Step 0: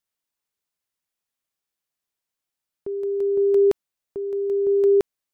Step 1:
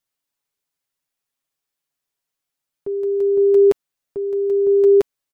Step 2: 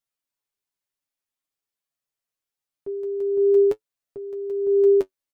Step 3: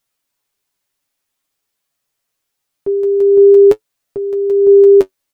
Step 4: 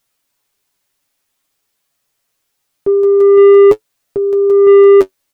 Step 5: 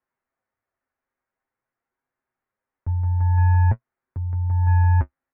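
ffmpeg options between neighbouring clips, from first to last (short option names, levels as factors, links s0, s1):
-af "aecho=1:1:7.2:0.54,volume=1.19"
-af "flanger=delay=8.7:depth=1.9:regen=42:speed=0.48:shape=sinusoidal,volume=0.75"
-af "alimiter=level_in=5.62:limit=0.891:release=50:level=0:latency=1,volume=0.891"
-af "acontrast=68,volume=0.891"
-af "lowshelf=f=290:g=-11.5,highpass=f=200:t=q:w=0.5412,highpass=f=200:t=q:w=1.307,lowpass=f=2200:t=q:w=0.5176,lowpass=f=2200:t=q:w=0.7071,lowpass=f=2200:t=q:w=1.932,afreqshift=-310,volume=0.422"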